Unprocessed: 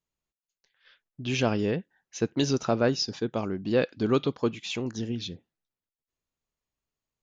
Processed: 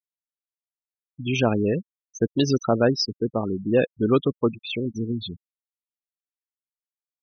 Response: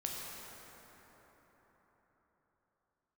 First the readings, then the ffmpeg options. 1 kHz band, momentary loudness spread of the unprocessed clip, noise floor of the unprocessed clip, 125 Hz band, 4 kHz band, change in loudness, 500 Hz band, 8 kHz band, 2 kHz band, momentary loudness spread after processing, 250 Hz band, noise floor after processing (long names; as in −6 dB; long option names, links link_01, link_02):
+3.5 dB, 9 LU, below −85 dBFS, +4.5 dB, +2.5 dB, +4.0 dB, +4.5 dB, can't be measured, +2.5 dB, 8 LU, +4.5 dB, below −85 dBFS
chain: -af "acrusher=bits=4:mode=log:mix=0:aa=0.000001,afftfilt=real='re*gte(hypot(re,im),0.0447)':imag='im*gte(hypot(re,im),0.0447)':win_size=1024:overlap=0.75,volume=4.5dB"